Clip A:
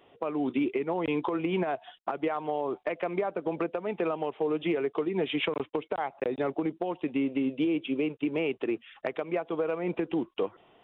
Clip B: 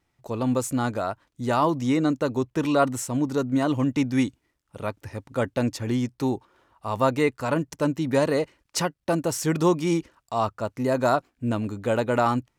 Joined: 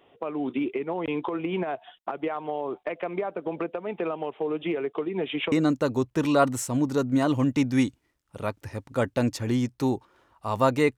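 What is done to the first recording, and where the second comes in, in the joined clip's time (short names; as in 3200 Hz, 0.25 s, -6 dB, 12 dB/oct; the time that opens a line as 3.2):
clip A
5.52 switch to clip B from 1.92 s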